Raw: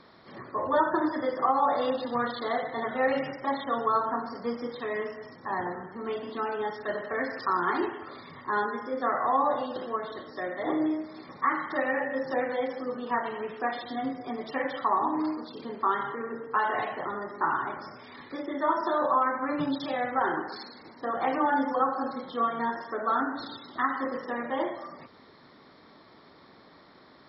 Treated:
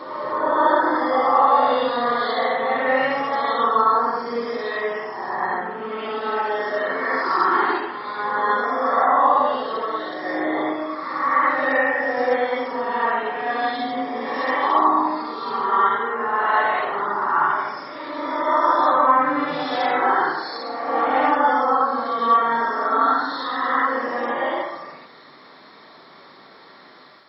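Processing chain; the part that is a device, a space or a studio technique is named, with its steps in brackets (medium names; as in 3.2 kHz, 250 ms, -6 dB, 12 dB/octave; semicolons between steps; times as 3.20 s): ghost voice (reverse; reverberation RT60 1.8 s, pre-delay 44 ms, DRR -5.5 dB; reverse; high-pass 750 Hz 6 dB/octave); trim +5 dB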